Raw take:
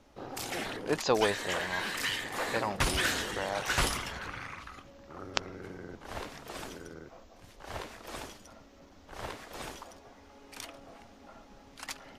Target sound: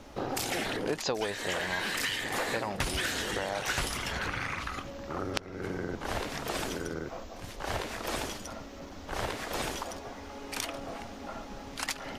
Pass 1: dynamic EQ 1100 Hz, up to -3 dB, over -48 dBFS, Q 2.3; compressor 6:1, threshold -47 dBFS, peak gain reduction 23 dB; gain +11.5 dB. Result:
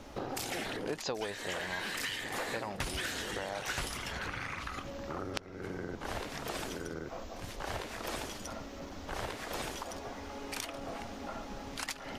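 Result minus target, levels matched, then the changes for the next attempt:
compressor: peak gain reduction +5 dB
change: compressor 6:1, threshold -41 dBFS, peak gain reduction 18 dB

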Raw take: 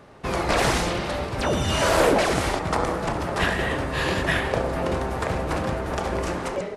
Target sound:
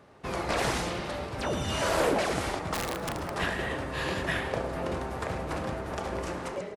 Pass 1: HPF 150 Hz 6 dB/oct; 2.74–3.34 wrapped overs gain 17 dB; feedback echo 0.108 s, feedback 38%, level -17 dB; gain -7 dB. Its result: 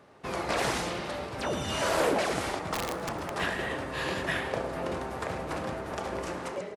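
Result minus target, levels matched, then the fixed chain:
125 Hz band -3.0 dB
HPF 48 Hz 6 dB/oct; 2.74–3.34 wrapped overs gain 17 dB; feedback echo 0.108 s, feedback 38%, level -17 dB; gain -7 dB

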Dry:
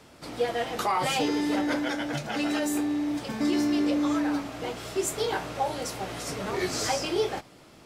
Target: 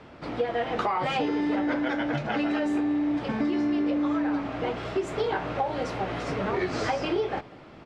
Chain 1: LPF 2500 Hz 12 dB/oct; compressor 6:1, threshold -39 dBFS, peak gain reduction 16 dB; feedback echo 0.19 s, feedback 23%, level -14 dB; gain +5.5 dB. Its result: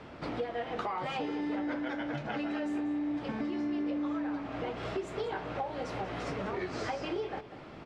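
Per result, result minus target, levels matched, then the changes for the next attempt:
compressor: peak gain reduction +8.5 dB; echo-to-direct +11.5 dB
change: compressor 6:1, threshold -29 dBFS, peak gain reduction 8 dB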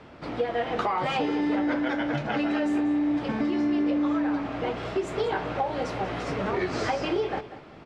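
echo-to-direct +11.5 dB
change: feedback echo 0.19 s, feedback 23%, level -25.5 dB

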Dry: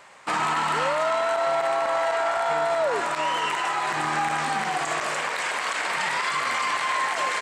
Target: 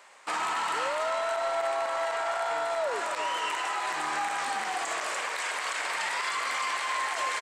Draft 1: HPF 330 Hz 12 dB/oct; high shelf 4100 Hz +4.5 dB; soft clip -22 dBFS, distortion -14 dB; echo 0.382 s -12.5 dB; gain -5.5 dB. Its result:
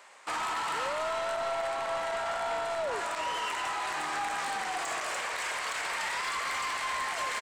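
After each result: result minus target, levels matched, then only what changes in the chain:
soft clip: distortion +15 dB; echo 0.126 s late
change: soft clip -12 dBFS, distortion -29 dB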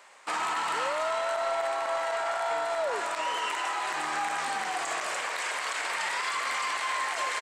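echo 0.126 s late
change: echo 0.256 s -12.5 dB

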